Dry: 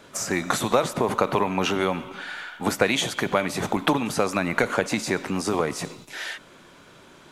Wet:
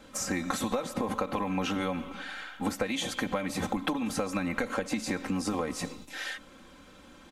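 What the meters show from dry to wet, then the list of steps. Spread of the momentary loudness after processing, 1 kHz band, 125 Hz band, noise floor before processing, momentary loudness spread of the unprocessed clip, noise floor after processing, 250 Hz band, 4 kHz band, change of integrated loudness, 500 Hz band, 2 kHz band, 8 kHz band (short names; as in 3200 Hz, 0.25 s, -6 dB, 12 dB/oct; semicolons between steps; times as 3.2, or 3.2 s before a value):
7 LU, -8.5 dB, -6.5 dB, -50 dBFS, 12 LU, -53 dBFS, -4.5 dB, -7.5 dB, -7.5 dB, -9.5 dB, -8.5 dB, -6.0 dB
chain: low shelf 160 Hz +10.5 dB; comb 3.8 ms, depth 81%; compressor 6:1, threshold -20 dBFS, peak gain reduction 10 dB; gain -6.5 dB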